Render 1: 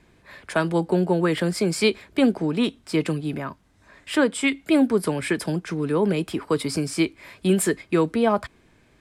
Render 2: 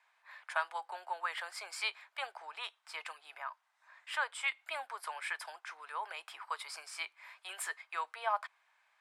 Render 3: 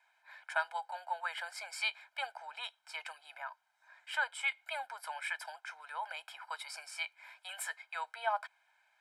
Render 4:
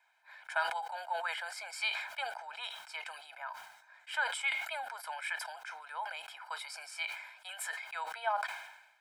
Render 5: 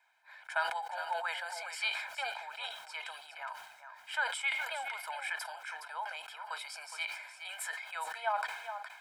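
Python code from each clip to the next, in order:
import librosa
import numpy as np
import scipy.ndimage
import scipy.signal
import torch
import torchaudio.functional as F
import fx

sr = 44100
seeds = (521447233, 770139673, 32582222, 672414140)

y1 = scipy.signal.sosfilt(scipy.signal.butter(6, 810.0, 'highpass', fs=sr, output='sos'), x)
y1 = fx.high_shelf(y1, sr, hz=2800.0, db=-11.5)
y1 = y1 * librosa.db_to_amplitude(-4.5)
y2 = y1 + 0.93 * np.pad(y1, (int(1.3 * sr / 1000.0), 0))[:len(y1)]
y2 = y2 * librosa.db_to_amplitude(-3.0)
y3 = fx.sustainer(y2, sr, db_per_s=63.0)
y4 = y3 + 10.0 ** (-9.5 / 20.0) * np.pad(y3, (int(415 * sr / 1000.0), 0))[:len(y3)]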